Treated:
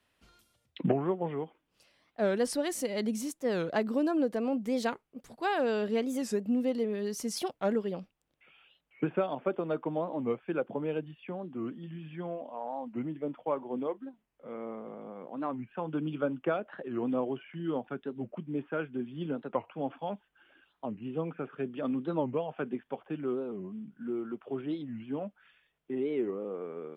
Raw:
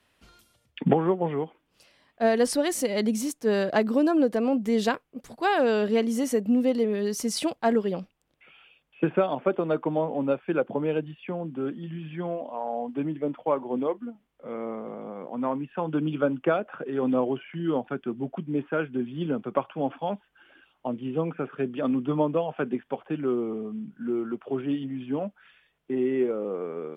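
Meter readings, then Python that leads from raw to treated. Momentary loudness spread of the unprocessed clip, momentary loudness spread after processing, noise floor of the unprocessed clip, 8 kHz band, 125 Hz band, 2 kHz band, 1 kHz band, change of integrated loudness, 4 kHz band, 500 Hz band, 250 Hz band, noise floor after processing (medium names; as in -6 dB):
11 LU, 11 LU, -71 dBFS, -6.5 dB, -6.5 dB, -6.5 dB, -6.5 dB, -6.5 dB, -6.5 dB, -6.5 dB, -6.5 dB, -77 dBFS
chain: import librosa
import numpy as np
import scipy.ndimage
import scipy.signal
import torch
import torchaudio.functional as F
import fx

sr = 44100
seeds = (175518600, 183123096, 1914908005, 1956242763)

y = fx.record_warp(x, sr, rpm=45.0, depth_cents=250.0)
y = y * 10.0 ** (-6.5 / 20.0)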